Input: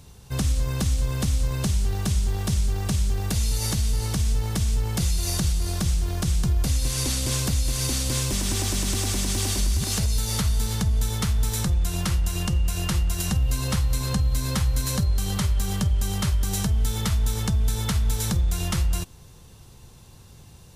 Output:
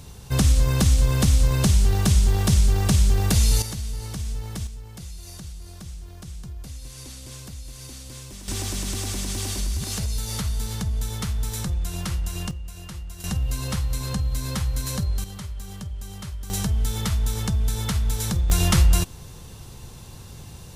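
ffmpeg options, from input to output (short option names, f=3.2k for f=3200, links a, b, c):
-af "asetnsamples=n=441:p=0,asendcmd='3.62 volume volume -6.5dB;4.67 volume volume -14.5dB;8.48 volume volume -3.5dB;12.51 volume volume -12.5dB;13.24 volume volume -2.5dB;15.24 volume volume -11dB;16.5 volume volume -0.5dB;18.5 volume volume 7dB',volume=5.5dB"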